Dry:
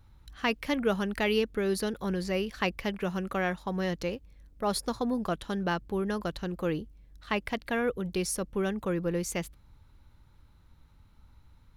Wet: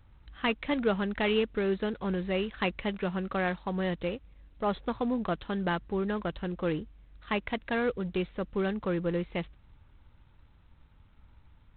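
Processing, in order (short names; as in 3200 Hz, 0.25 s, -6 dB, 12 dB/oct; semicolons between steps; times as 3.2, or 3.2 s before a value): G.726 24 kbps 8000 Hz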